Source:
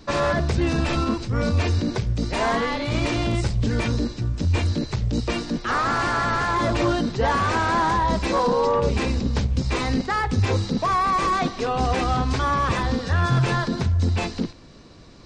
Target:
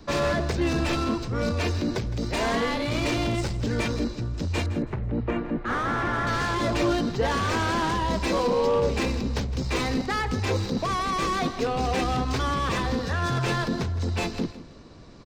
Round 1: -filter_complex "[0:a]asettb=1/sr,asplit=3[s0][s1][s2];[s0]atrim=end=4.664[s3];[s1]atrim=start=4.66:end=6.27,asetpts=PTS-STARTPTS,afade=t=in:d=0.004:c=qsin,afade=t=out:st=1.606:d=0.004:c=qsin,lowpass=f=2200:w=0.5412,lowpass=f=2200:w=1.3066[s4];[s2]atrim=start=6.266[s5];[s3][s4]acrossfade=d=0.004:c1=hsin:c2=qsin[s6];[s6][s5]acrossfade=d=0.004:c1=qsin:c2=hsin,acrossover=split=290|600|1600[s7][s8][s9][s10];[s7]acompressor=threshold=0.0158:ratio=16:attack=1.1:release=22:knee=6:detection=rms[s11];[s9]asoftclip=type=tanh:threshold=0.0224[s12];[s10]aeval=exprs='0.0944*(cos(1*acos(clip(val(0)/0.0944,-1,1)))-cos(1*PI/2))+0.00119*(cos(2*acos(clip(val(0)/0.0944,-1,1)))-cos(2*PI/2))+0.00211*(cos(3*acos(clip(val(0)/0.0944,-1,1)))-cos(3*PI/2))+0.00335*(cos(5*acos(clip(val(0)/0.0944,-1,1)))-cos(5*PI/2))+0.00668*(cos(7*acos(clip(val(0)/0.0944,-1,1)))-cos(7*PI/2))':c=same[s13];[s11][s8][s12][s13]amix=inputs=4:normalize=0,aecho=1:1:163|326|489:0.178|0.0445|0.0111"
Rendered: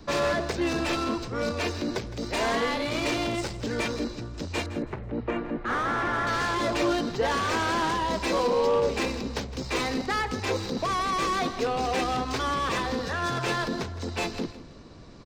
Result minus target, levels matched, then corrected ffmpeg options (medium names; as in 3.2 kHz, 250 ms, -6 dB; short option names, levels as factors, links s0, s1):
compression: peak gain reduction +10 dB
-filter_complex "[0:a]asettb=1/sr,asplit=3[s0][s1][s2];[s0]atrim=end=4.664[s3];[s1]atrim=start=4.66:end=6.27,asetpts=PTS-STARTPTS,afade=t=in:d=0.004:c=qsin,afade=t=out:st=1.606:d=0.004:c=qsin,lowpass=f=2200:w=0.5412,lowpass=f=2200:w=1.3066[s4];[s2]atrim=start=6.266[s5];[s3][s4]acrossfade=d=0.004:c1=hsin:c2=qsin[s6];[s6][s5]acrossfade=d=0.004:c1=qsin:c2=hsin,acrossover=split=290|600|1600[s7][s8][s9][s10];[s7]acompressor=threshold=0.0531:ratio=16:attack=1.1:release=22:knee=6:detection=rms[s11];[s9]asoftclip=type=tanh:threshold=0.0224[s12];[s10]aeval=exprs='0.0944*(cos(1*acos(clip(val(0)/0.0944,-1,1)))-cos(1*PI/2))+0.00119*(cos(2*acos(clip(val(0)/0.0944,-1,1)))-cos(2*PI/2))+0.00211*(cos(3*acos(clip(val(0)/0.0944,-1,1)))-cos(3*PI/2))+0.00335*(cos(5*acos(clip(val(0)/0.0944,-1,1)))-cos(5*PI/2))+0.00668*(cos(7*acos(clip(val(0)/0.0944,-1,1)))-cos(7*PI/2))':c=same[s13];[s11][s8][s12][s13]amix=inputs=4:normalize=0,aecho=1:1:163|326|489:0.178|0.0445|0.0111"